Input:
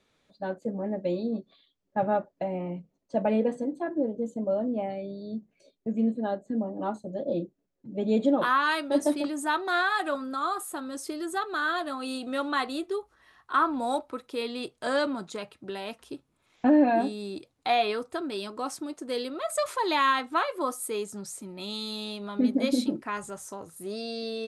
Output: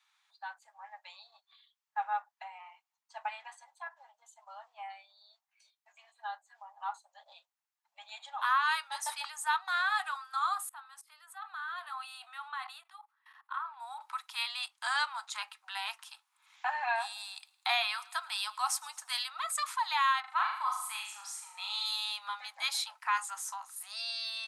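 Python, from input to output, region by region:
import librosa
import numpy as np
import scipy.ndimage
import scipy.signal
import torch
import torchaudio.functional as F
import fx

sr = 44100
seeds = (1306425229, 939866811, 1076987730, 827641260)

y = fx.chain(x, sr, fx.level_steps(step_db=20),
    fx.peak_eq(hz=6300.0, db=-11.5, octaves=1.3), at=(10.69, 14.01))
y = fx.chain(y, sr, fx.high_shelf(hz=7700.0, db=6.5),
    fx.echo_feedback(ms=110, feedback_pct=46, wet_db=-22.5), at=(16.94, 19.24))
y = fx.chain(y, sr, fx.lowpass(hz=3200.0, slope=6),
    fx.room_flutter(wall_m=6.7, rt60_s=0.59), at=(20.2, 21.86))
y = scipy.signal.sosfilt(scipy.signal.butter(12, 810.0, 'highpass', fs=sr, output='sos'), y)
y = fx.rider(y, sr, range_db=4, speed_s=0.5)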